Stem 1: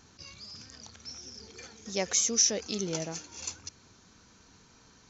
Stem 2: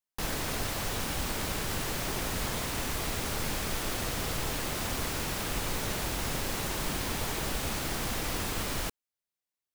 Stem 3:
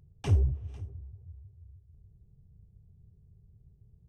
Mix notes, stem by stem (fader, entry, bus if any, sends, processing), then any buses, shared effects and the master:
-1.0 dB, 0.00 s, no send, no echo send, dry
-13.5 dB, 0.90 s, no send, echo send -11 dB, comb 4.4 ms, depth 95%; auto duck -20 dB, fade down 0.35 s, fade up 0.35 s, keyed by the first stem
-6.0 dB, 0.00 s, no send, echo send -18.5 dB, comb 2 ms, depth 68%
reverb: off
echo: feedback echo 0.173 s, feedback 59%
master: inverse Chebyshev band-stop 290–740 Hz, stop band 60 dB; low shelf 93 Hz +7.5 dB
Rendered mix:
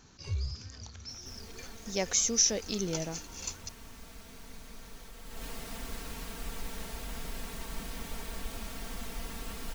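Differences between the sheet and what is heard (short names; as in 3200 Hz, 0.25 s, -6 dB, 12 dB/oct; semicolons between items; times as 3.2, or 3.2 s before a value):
stem 3 -6.0 dB -> -17.0 dB; master: missing inverse Chebyshev band-stop 290–740 Hz, stop band 60 dB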